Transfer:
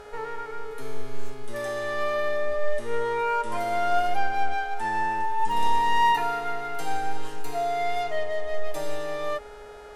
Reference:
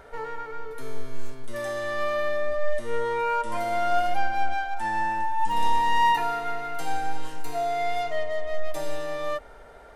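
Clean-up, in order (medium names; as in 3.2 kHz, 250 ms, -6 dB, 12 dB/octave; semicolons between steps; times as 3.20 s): de-hum 418.2 Hz, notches 29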